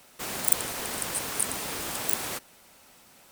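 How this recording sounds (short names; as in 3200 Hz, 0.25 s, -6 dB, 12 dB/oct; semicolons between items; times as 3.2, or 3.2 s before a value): noise floor -56 dBFS; spectral tilt -1.0 dB/oct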